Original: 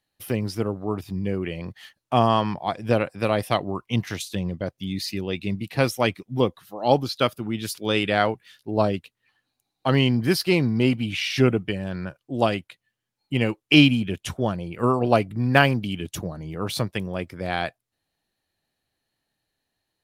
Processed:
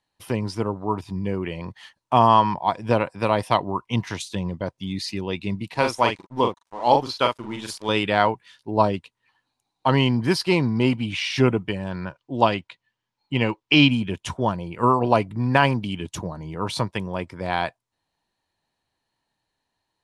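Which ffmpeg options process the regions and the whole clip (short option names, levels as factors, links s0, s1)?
-filter_complex "[0:a]asettb=1/sr,asplit=3[s0][s1][s2];[s0]atrim=end=5.744[s3];[s1]atrim=start=5.74:end=7.89,asetpts=PTS-STARTPTS,afade=t=in:d=0.004:c=qsin,afade=t=out:st=2.146:d=0.004:c=qsin,equalizer=f=140:w=0.66:g=-6,aeval=exprs='sgn(val(0))*max(abs(val(0))-0.00631,0)':c=same,asplit=2[s4][s5];[s5]adelay=42,volume=0.562[s6];[s4][s6]amix=inputs=2:normalize=0,atrim=end_sample=94815[s7];[s2]atrim=start=7.886[s8];[s3][s7]acrossfade=d=0.004:c1=hsin:c2=qsin[s9];[s9][s8]acrossfade=d=0.004:c1=qsin:c2=hsin,asettb=1/sr,asplit=3[s10][s11][s12];[s10]atrim=end=12.014[s13];[s11]atrim=start=12.01:end=13.91,asetpts=PTS-STARTPTS,afade=t=in:d=0.004:c=qsin,afade=t=out:st=1.896:d=0.004:c=qsin,lowpass=4500,highshelf=f=3500:g=7[s14];[s12]atrim=start=13.906[s15];[s13][s14]acrossfade=d=0.004:c1=hsin:c2=qsin[s16];[s16][s15]acrossfade=d=0.004:c1=qsin:c2=hsin,lowpass=f=9700:w=0.5412,lowpass=f=9700:w=1.3066,equalizer=f=960:w=4.8:g=13,alimiter=level_in=1.33:limit=0.891:release=50:level=0:latency=1,volume=0.75"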